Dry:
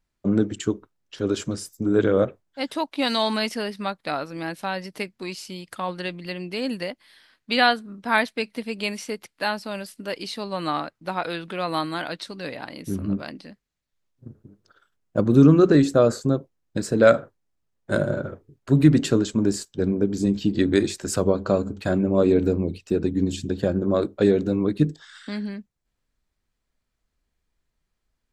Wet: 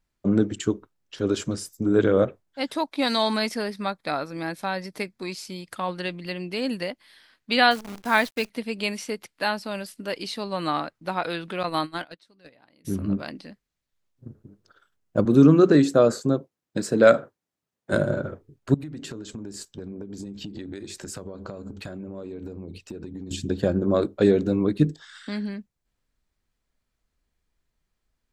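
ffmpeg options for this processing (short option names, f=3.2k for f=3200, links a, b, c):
-filter_complex "[0:a]asettb=1/sr,asplit=3[a][b][c];[a]atrim=end=2.724[d];[b]atrim=start=2.72:end=5.7,asetpts=PTS-STARTPTS,afade=t=in:d=0.004:c=qsin,afade=t=out:st=2.976:d=0.004:c=qsin,bandreject=f=2.9k:w=7.6[e];[c]atrim=start=5.696[f];[d][e]acrossfade=d=0.004:c1=hsin:c2=qsin[g];[g][f]acrossfade=d=0.004:c1=qsin:c2=hsin,asettb=1/sr,asplit=3[h][i][j];[h]atrim=end=7.714[k];[i]atrim=start=7.71:end=8.5,asetpts=PTS-STARTPTS,afade=t=in:d=0.004:c=qsin,afade=t=out:st=0.786:d=0.004:c=qsin,acrusher=bits=7:dc=4:mix=0:aa=0.000001[l];[j]atrim=start=8.496[m];[k][l]acrossfade=d=0.004:c1=hsin:c2=qsin[n];[n][m]acrossfade=d=0.004:c1=qsin:c2=hsin,asettb=1/sr,asplit=3[o][p][q];[o]atrim=end=11.634[r];[p]atrim=start=11.63:end=12.85,asetpts=PTS-STARTPTS,afade=t=in:d=0.004:c=qsin,afade=t=out:st=1.216:d=0.004:c=qsin,agate=range=-23dB:threshold=-29dB:ratio=16:release=100:detection=peak[s];[q]atrim=start=12.846[t];[r][s]acrossfade=d=0.004:c1=hsin:c2=qsin[u];[u][t]acrossfade=d=0.004:c1=qsin:c2=hsin,asettb=1/sr,asplit=3[v][w][x];[v]atrim=end=15.254[y];[w]atrim=start=15.25:end=17.93,asetpts=PTS-STARTPTS,afade=t=in:d=0.004:c=qsin,afade=t=out:st=2.676:d=0.004:c=qsin,highpass=140[z];[x]atrim=start=17.926[aa];[y][z]acrossfade=d=0.004:c1=hsin:c2=qsin[ab];[ab][aa]acrossfade=d=0.004:c1=qsin:c2=hsin,asettb=1/sr,asplit=3[ac][ad][ae];[ac]atrim=end=18.744[af];[ad]atrim=start=18.74:end=23.31,asetpts=PTS-STARTPTS,afade=t=in:d=0.004:c=qsin,afade=t=out:st=4.566:d=0.004:c=qsin,acompressor=threshold=-32dB:ratio=16:attack=3.2:release=140:knee=1:detection=peak[ag];[ae]atrim=start=23.306[ah];[af][ag]acrossfade=d=0.004:c1=hsin:c2=qsin[ai];[ai][ah]acrossfade=d=0.004:c1=qsin:c2=hsin"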